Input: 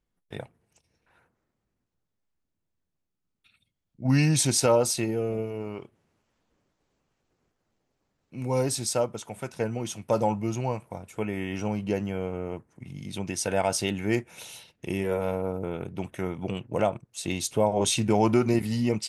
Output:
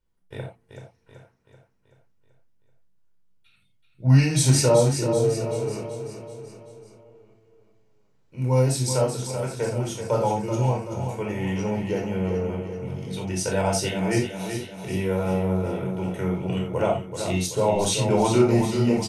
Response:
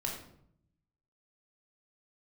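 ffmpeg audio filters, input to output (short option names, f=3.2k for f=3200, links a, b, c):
-filter_complex "[0:a]asettb=1/sr,asplit=3[a][b][c];[a]atrim=end=4.654[d];[b]atrim=start=4.65:end=5.24,asetpts=PTS-STARTPTS,afade=t=in:d=0.004:c=qsin,afade=t=out:st=0.586:d=0.004:c=qsin,lowpass=f=1.1k:w=0.5412,lowpass=f=1.1k:w=1.3066[e];[c]atrim=start=5.236[f];[d][e]acrossfade=d=0.004:c1=hsin:c2=qsin[g];[g][f]acrossfade=d=0.004:c1=qsin:c2=hsin,aecho=1:1:382|764|1146|1528|1910|2292:0.398|0.203|0.104|0.0528|0.0269|0.0137[h];[1:a]atrim=start_sample=2205,afade=t=out:st=0.14:d=0.01,atrim=end_sample=6615[i];[h][i]afir=irnorm=-1:irlink=0"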